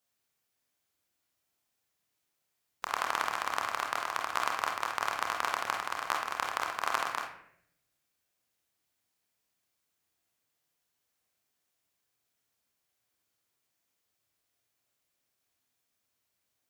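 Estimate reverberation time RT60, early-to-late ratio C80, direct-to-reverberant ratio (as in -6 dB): 0.70 s, 8.0 dB, 0.0 dB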